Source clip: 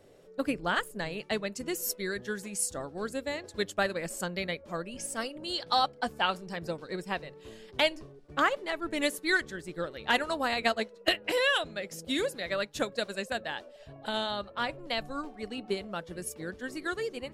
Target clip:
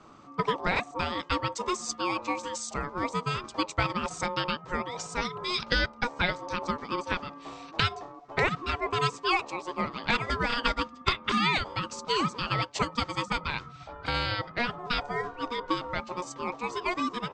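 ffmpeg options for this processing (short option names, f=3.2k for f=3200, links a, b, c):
-filter_complex "[0:a]acrossover=split=180[a][b];[b]acompressor=threshold=-31dB:ratio=2[c];[a][c]amix=inputs=2:normalize=0,aresample=16000,aresample=44100,aeval=exprs='val(0)*sin(2*PI*720*n/s)':c=same,volume=8dB"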